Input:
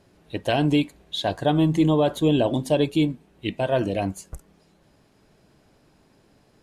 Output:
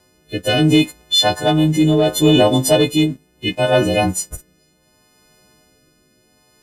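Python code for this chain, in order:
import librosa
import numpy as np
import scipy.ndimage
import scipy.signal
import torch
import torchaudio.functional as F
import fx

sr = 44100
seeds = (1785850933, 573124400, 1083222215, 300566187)

y = fx.freq_snap(x, sr, grid_st=3)
y = fx.leveller(y, sr, passes=1)
y = fx.rotary(y, sr, hz=0.7)
y = F.gain(torch.from_numpy(y), 5.5).numpy()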